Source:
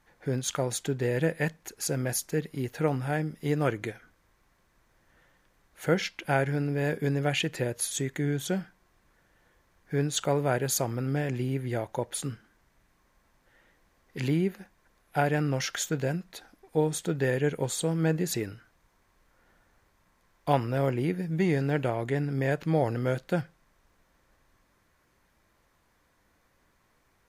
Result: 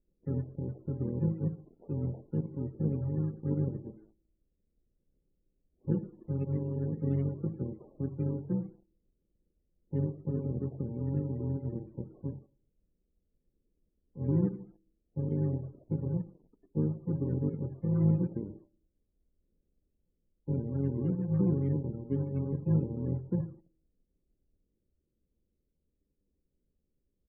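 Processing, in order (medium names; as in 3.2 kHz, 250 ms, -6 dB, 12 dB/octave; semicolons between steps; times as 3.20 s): bit-reversed sample order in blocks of 64 samples; peaking EQ 110 Hz -9 dB 0.76 oct; on a send at -14 dB: reverberation RT60 0.55 s, pre-delay 34 ms; on the sum: dynamic bell 150 Hz, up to +7 dB, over -47 dBFS, Q 1.2; inverse Chebyshev low-pass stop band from 3.3 kHz, stop band 80 dB; de-hum 323.2 Hz, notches 4; in parallel at -5.5 dB: companded quantiser 4-bit; on the sum: loudest bins only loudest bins 32; harmony voices -7 st -10 dB; trim -6.5 dB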